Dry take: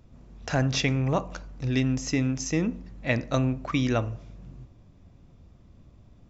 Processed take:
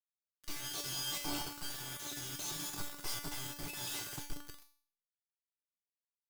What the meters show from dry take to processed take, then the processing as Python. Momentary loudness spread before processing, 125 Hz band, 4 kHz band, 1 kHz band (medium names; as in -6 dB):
15 LU, -24.5 dB, -4.0 dB, -12.5 dB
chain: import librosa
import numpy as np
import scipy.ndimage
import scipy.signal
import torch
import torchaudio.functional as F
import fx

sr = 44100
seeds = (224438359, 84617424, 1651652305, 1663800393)

y = fx.band_shuffle(x, sr, order='3142')
y = fx.cheby_harmonics(y, sr, harmonics=(3, 4, 5, 6), levels_db=(-35, -16, -21, -8), full_scale_db=-8.0)
y = fx.schmitt(y, sr, flips_db=-35.5)
y = fx.level_steps(y, sr, step_db=13)
y = fx.fixed_phaser(y, sr, hz=350.0, stages=8)
y = fx.echo_feedback(y, sr, ms=183, feedback_pct=53, wet_db=-11)
y = fx.noise_reduce_blind(y, sr, reduce_db=15)
y = fx.rotary_switch(y, sr, hz=0.6, then_hz=5.5, switch_at_s=3.51)
y = fx.quant_dither(y, sr, seeds[0], bits=6, dither='none')
y = fx.comb_fb(y, sr, f0_hz=290.0, decay_s=0.49, harmonics='all', damping=0.0, mix_pct=90)
y = F.gain(torch.from_numpy(y), 7.0).numpy()